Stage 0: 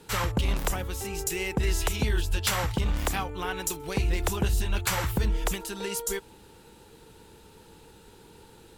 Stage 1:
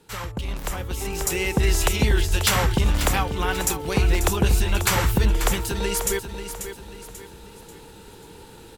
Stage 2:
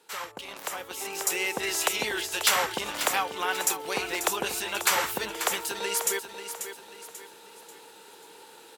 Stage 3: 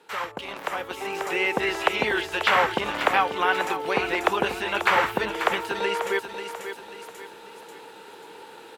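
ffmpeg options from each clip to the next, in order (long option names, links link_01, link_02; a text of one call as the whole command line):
ffmpeg -i in.wav -filter_complex "[0:a]asplit=2[link_01][link_02];[link_02]aecho=0:1:539|1078|1617|2156:0.316|0.123|0.0481|0.0188[link_03];[link_01][link_03]amix=inputs=2:normalize=0,dynaudnorm=framelen=220:gausssize=9:maxgain=11.5dB,volume=-4.5dB" out.wav
ffmpeg -i in.wav -af "highpass=510,volume=-1.5dB" out.wav
ffmpeg -i in.wav -filter_complex "[0:a]acrossover=split=3400[link_01][link_02];[link_02]acompressor=threshold=-40dB:ratio=4:attack=1:release=60[link_03];[link_01][link_03]amix=inputs=2:normalize=0,bass=frequency=250:gain=1,treble=frequency=4000:gain=-12,volume=7dB" out.wav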